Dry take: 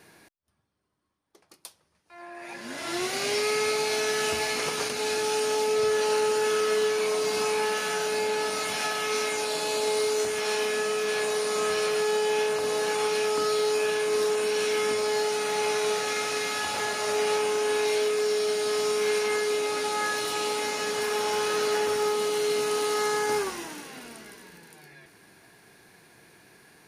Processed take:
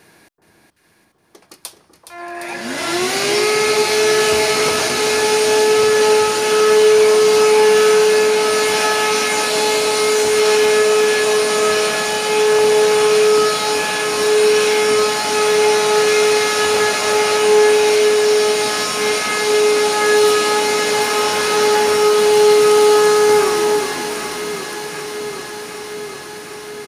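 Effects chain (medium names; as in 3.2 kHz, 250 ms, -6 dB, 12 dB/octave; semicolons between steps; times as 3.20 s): feedback delay 418 ms, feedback 42%, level -10.5 dB; in parallel at -1.5 dB: peak limiter -26 dBFS, peak gain reduction 11 dB; on the sum: level rider gain up to 8 dB; echo whose repeats swap between lows and highs 382 ms, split 1.2 kHz, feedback 85%, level -7 dB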